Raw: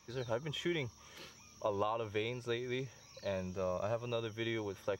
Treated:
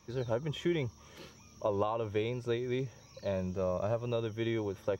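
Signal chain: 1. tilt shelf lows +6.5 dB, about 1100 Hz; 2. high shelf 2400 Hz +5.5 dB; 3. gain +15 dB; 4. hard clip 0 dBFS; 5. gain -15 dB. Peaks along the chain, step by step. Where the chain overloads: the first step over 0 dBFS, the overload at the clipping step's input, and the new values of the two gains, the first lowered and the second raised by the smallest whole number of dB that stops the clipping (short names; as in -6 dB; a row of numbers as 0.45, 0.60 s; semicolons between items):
-17.5, -17.0, -2.0, -2.0, -17.0 dBFS; no overload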